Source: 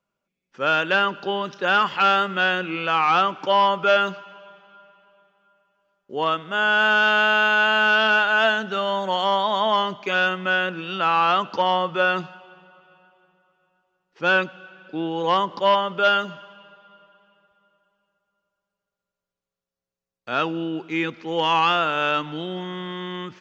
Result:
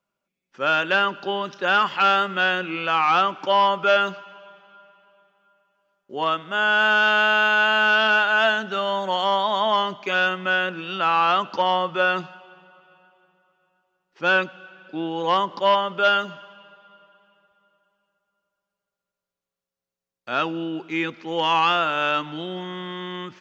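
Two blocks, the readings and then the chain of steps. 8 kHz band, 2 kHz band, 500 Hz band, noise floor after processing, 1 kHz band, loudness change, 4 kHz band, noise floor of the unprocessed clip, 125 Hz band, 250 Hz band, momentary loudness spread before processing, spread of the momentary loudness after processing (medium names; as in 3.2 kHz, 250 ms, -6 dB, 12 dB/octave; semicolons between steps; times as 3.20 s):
no reading, 0.0 dB, -0.5 dB, under -85 dBFS, 0.0 dB, 0.0 dB, 0.0 dB, under -85 dBFS, -2.5 dB, -1.5 dB, 12 LU, 13 LU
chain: bass shelf 140 Hz -6 dB; band-stop 460 Hz, Q 12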